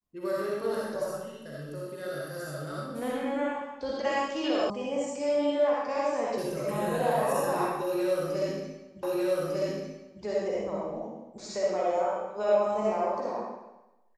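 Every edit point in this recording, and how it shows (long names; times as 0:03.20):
0:04.70: cut off before it has died away
0:09.03: the same again, the last 1.2 s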